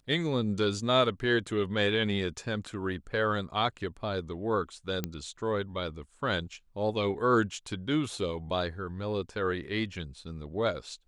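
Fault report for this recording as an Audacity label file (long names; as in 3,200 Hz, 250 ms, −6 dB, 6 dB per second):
5.040000	5.040000	click −16 dBFS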